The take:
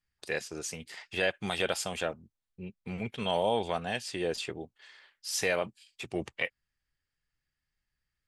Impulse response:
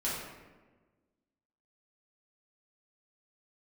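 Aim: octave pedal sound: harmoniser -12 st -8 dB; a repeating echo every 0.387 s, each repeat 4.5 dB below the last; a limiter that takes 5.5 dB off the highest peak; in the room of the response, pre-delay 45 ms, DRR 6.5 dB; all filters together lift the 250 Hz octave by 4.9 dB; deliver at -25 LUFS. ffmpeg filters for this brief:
-filter_complex "[0:a]equalizer=f=250:t=o:g=7,alimiter=limit=-19dB:level=0:latency=1,aecho=1:1:387|774|1161|1548|1935|2322|2709|3096|3483:0.596|0.357|0.214|0.129|0.0772|0.0463|0.0278|0.0167|0.01,asplit=2[a][b];[1:a]atrim=start_sample=2205,adelay=45[c];[b][c]afir=irnorm=-1:irlink=0,volume=-12.5dB[d];[a][d]amix=inputs=2:normalize=0,asplit=2[e][f];[f]asetrate=22050,aresample=44100,atempo=2,volume=-8dB[g];[e][g]amix=inputs=2:normalize=0,volume=6.5dB"

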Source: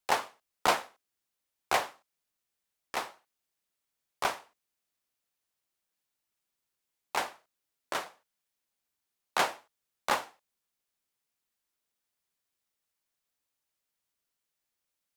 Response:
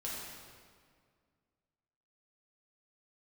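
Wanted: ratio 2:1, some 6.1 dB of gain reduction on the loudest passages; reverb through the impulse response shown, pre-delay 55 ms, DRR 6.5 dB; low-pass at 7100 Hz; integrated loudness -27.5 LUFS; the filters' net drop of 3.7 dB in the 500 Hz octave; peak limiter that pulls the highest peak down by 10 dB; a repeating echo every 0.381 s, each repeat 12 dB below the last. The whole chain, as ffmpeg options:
-filter_complex "[0:a]lowpass=7.1k,equalizer=f=500:t=o:g=-5,acompressor=threshold=-34dB:ratio=2,alimiter=level_in=1.5dB:limit=-24dB:level=0:latency=1,volume=-1.5dB,aecho=1:1:381|762|1143:0.251|0.0628|0.0157,asplit=2[a][b];[1:a]atrim=start_sample=2205,adelay=55[c];[b][c]afir=irnorm=-1:irlink=0,volume=-8dB[d];[a][d]amix=inputs=2:normalize=0,volume=16.5dB"

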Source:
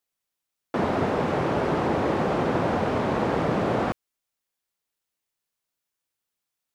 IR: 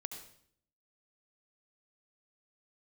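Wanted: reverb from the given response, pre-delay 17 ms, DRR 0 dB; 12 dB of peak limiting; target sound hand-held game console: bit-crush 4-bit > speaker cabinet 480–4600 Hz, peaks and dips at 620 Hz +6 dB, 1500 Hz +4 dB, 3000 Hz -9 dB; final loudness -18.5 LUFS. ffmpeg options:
-filter_complex "[0:a]alimiter=limit=-23dB:level=0:latency=1,asplit=2[a][b];[1:a]atrim=start_sample=2205,adelay=17[c];[b][c]afir=irnorm=-1:irlink=0,volume=2dB[d];[a][d]amix=inputs=2:normalize=0,acrusher=bits=3:mix=0:aa=0.000001,highpass=480,equalizer=f=620:t=q:w=4:g=6,equalizer=f=1.5k:t=q:w=4:g=4,equalizer=f=3k:t=q:w=4:g=-9,lowpass=f=4.6k:w=0.5412,lowpass=f=4.6k:w=1.3066,volume=10dB"

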